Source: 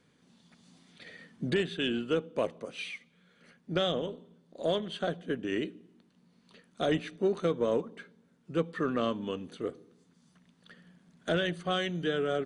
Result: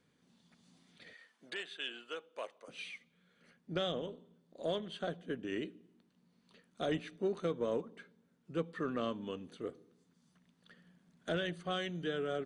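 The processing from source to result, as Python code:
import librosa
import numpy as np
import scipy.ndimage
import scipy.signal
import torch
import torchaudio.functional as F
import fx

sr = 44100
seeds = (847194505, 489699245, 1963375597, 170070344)

y = fx.highpass(x, sr, hz=780.0, slope=12, at=(1.13, 2.68))
y = y * 10.0 ** (-6.5 / 20.0)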